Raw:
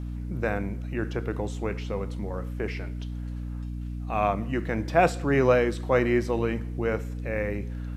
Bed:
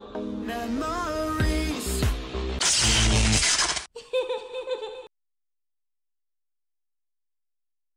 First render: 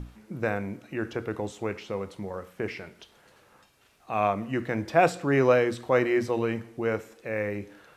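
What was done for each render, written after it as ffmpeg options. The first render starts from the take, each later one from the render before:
-af "bandreject=f=60:t=h:w=6,bandreject=f=120:t=h:w=6,bandreject=f=180:t=h:w=6,bandreject=f=240:t=h:w=6,bandreject=f=300:t=h:w=6"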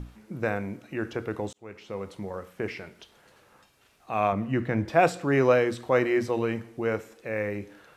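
-filter_complex "[0:a]asettb=1/sr,asplit=3[a][b][c];[a]atrim=end=4.324[d];[b]atrim=start=4.32:end=4.9,asetpts=PTS-STARTPTS,afade=t=in:d=0.004:c=qsin,afade=t=out:st=0.576:d=0.004:c=qsin,bass=f=250:g=6,treble=f=4k:g=-6[e];[c]atrim=start=4.896[f];[d][e]acrossfade=d=0.004:c1=hsin:c2=qsin[g];[g][f]acrossfade=d=0.004:c1=qsin:c2=hsin,asplit=2[h][i];[h]atrim=end=1.53,asetpts=PTS-STARTPTS,afade=t=out:st=1.526:d=0.004:c=hsin[j];[i]atrim=start=1.53,asetpts=PTS-STARTPTS,afade=t=in:d=0.59[k];[j][k]concat=n=2:v=0:a=1"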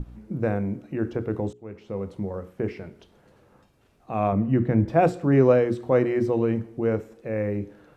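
-af "tiltshelf=f=740:g=8.5,bandreject=f=60:t=h:w=6,bandreject=f=120:t=h:w=6,bandreject=f=180:t=h:w=6,bandreject=f=240:t=h:w=6,bandreject=f=300:t=h:w=6,bandreject=f=360:t=h:w=6,bandreject=f=420:t=h:w=6"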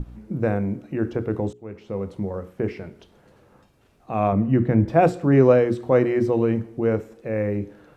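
-af "volume=2.5dB"

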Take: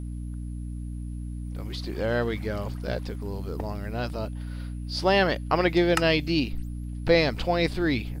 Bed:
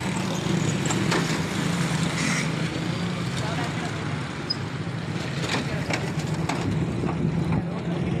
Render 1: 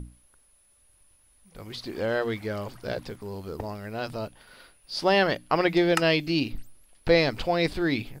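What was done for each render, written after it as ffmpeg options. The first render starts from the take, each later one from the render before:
-af "bandreject=f=60:t=h:w=6,bandreject=f=120:t=h:w=6,bandreject=f=180:t=h:w=6,bandreject=f=240:t=h:w=6,bandreject=f=300:t=h:w=6"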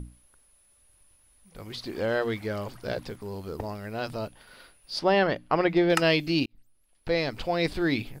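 -filter_complex "[0:a]asettb=1/sr,asplit=3[a][b][c];[a]atrim=end=4.994[d];[b]atrim=start=4.99:end=5.9,asetpts=PTS-STARTPTS,afade=t=in:d=0.004:c=qsin,afade=t=out:st=0.906:d=0.004:c=qsin,lowpass=f=2.1k:p=1[e];[c]atrim=start=5.896[f];[d][e]acrossfade=d=0.004:c1=hsin:c2=qsin[g];[g][f]acrossfade=d=0.004:c1=qsin:c2=hsin,asplit=2[h][i];[h]atrim=end=6.46,asetpts=PTS-STARTPTS,afade=t=out:st=6.456:d=0.004:c=hsin[j];[i]atrim=start=6.46,asetpts=PTS-STARTPTS,afade=t=in:d=1.39[k];[j][k]concat=n=2:v=0:a=1"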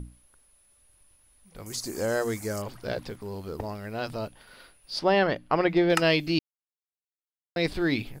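-filter_complex "[0:a]asettb=1/sr,asplit=3[a][b][c];[a]atrim=end=1.664[d];[b]atrim=start=1.66:end=2.62,asetpts=PTS-STARTPTS,afade=t=in:d=0.004:c=qsin,afade=t=out:st=0.956:d=0.004:c=qsin,highshelf=f=4.9k:t=q:w=3:g=13[e];[c]atrim=start=2.616[f];[d][e]acrossfade=d=0.004:c1=hsin:c2=qsin[g];[g][f]acrossfade=d=0.004:c1=qsin:c2=hsin,asplit=3[h][i][j];[h]atrim=end=6.39,asetpts=PTS-STARTPTS,afade=t=out:st=6.386:d=0.004:c=hsin[k];[i]atrim=start=6.39:end=7.56,asetpts=PTS-STARTPTS,volume=0[l];[j]atrim=start=7.56,asetpts=PTS-STARTPTS,afade=t=in:d=0.004:c=hsin[m];[k][l][m]concat=n=3:v=0:a=1"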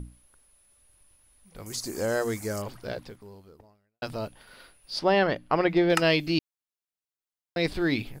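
-filter_complex "[0:a]asplit=2[a][b];[a]atrim=end=4.02,asetpts=PTS-STARTPTS,afade=t=out:st=2.71:d=1.31:c=qua[c];[b]atrim=start=4.02,asetpts=PTS-STARTPTS,afade=t=in:d=0.004:c=hsin[d];[c][d]concat=n=2:v=0:a=1"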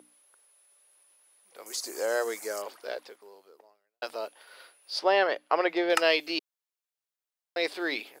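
-af "highpass=f=410:w=0.5412,highpass=f=410:w=1.3066"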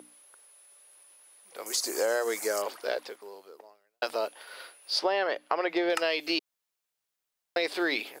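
-filter_complex "[0:a]asplit=2[a][b];[b]alimiter=limit=-19.5dB:level=0:latency=1:release=71,volume=0.5dB[c];[a][c]amix=inputs=2:normalize=0,acompressor=threshold=-24dB:ratio=6"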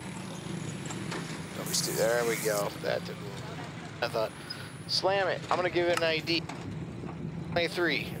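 -filter_complex "[1:a]volume=-13dB[a];[0:a][a]amix=inputs=2:normalize=0"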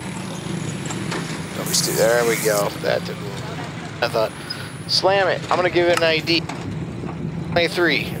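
-af "volume=10.5dB,alimiter=limit=-3dB:level=0:latency=1"

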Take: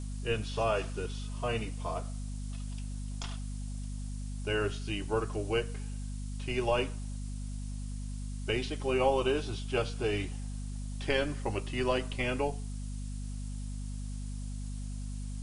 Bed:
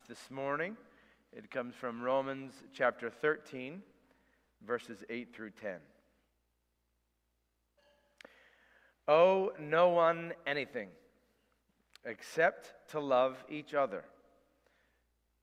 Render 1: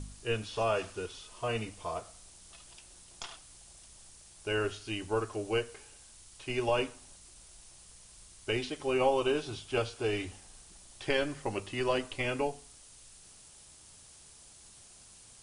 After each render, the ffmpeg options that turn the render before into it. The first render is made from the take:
-af "bandreject=f=50:t=h:w=4,bandreject=f=100:t=h:w=4,bandreject=f=150:t=h:w=4,bandreject=f=200:t=h:w=4,bandreject=f=250:t=h:w=4"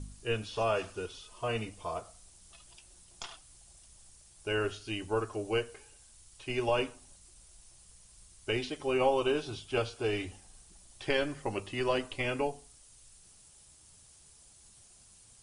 -af "afftdn=nr=6:nf=-56"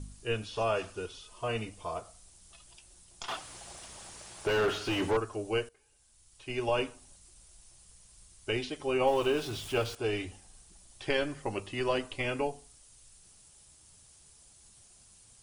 -filter_complex "[0:a]asettb=1/sr,asplit=3[a][b][c];[a]atrim=end=3.284[d];[b]atrim=start=3.28:end=5.17,asetpts=PTS-STARTPTS,afade=t=in:d=0.004:c=qsin,afade=t=out:st=1.886:d=0.004:c=qsin,asplit=2[e][f];[f]highpass=f=720:p=1,volume=32dB,asoftclip=type=tanh:threshold=-19dB[g];[e][g]amix=inputs=2:normalize=0,lowpass=f=1.1k:p=1,volume=-6dB[h];[c]atrim=start=5.166[i];[d][h]acrossfade=d=0.004:c1=hsin:c2=qsin[j];[j][i]acrossfade=d=0.004:c1=qsin:c2=hsin,asettb=1/sr,asplit=3[k][l][m];[k]atrim=end=9.074[n];[l]atrim=start=9.07:end=9.95,asetpts=PTS-STARTPTS,afade=t=in:d=0.004:c=qsin,afade=t=out:st=0.876:d=0.004:c=qsin,aeval=exprs='val(0)+0.5*0.01*sgn(val(0))':c=same[o];[m]atrim=start=9.946[p];[n][o]acrossfade=d=0.004:c1=hsin:c2=qsin[q];[q][p]acrossfade=d=0.004:c1=qsin:c2=hsin,asplit=2[r][s];[r]atrim=end=5.69,asetpts=PTS-STARTPTS,afade=t=out:st=5.686:d=0.004:c=hsin:silence=0.11885[t];[s]atrim=start=5.69,asetpts=PTS-STARTPTS,afade=t=in:d=1.07:silence=0.11885[u];[t][u]concat=n=2:v=0:a=1"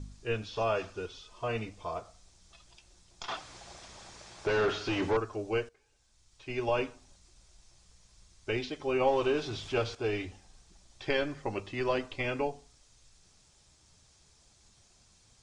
-af "lowpass=f=6.5k:w=0.5412,lowpass=f=6.5k:w=1.3066,bandreject=f=2.9k:w=14"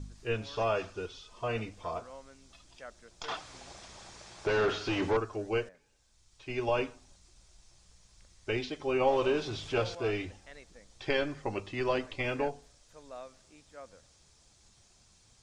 -filter_complex "[1:a]volume=-16.5dB[a];[0:a][a]amix=inputs=2:normalize=0"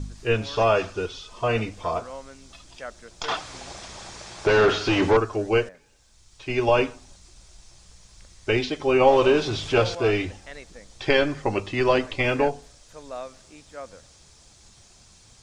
-af "volume=10dB"

